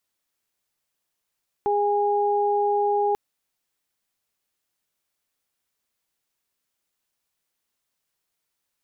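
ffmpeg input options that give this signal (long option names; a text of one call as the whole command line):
ffmpeg -f lavfi -i "aevalsrc='0.0794*sin(2*PI*410*t)+0.0841*sin(2*PI*820*t)':duration=1.49:sample_rate=44100" out.wav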